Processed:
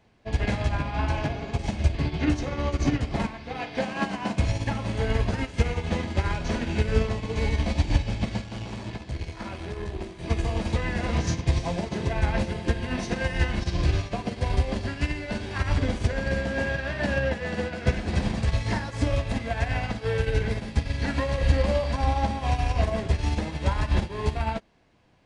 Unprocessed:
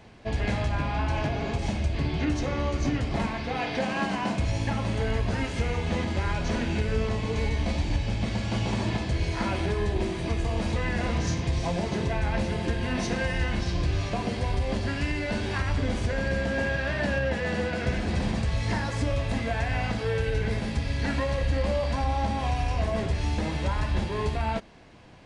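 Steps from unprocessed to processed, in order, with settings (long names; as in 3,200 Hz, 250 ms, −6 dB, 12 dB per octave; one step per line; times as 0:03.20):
0:08.44–0:10.19: tube saturation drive 23 dB, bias 0.45
expander for the loud parts 2.5 to 1, over −34 dBFS
level +7.5 dB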